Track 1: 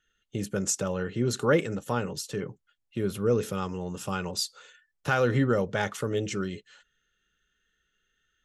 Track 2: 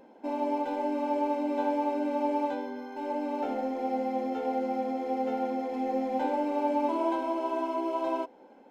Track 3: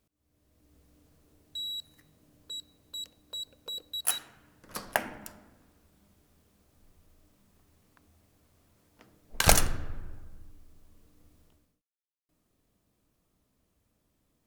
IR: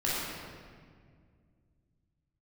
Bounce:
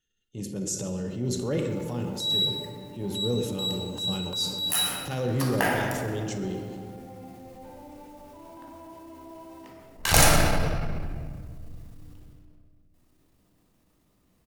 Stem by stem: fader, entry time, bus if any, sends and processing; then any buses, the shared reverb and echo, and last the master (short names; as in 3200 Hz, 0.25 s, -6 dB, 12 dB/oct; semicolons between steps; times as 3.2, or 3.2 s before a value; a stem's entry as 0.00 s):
-2.5 dB, 0.00 s, send -12 dB, bell 1400 Hz -15 dB 1.5 oct
-16.0 dB, 1.45 s, send -7 dB, compressor, threshold -32 dBFS, peak gain reduction 9.5 dB; modulation noise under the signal 18 dB
0.0 dB, 0.65 s, send -4 dB, dry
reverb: on, RT60 1.9 s, pre-delay 16 ms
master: low shelf 66 Hz -6 dB; transient shaper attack -7 dB, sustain +3 dB